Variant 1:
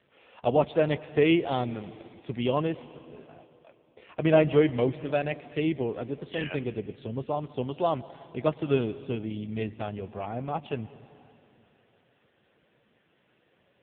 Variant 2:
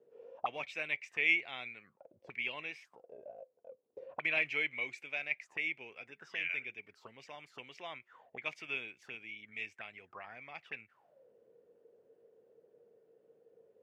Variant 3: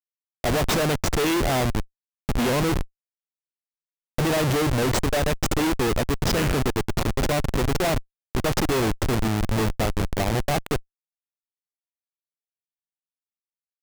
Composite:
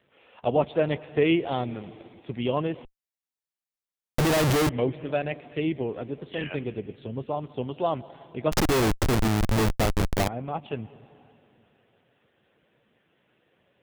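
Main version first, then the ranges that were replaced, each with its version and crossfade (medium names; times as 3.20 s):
1
2.85–4.69 s: from 3
8.52–10.28 s: from 3
not used: 2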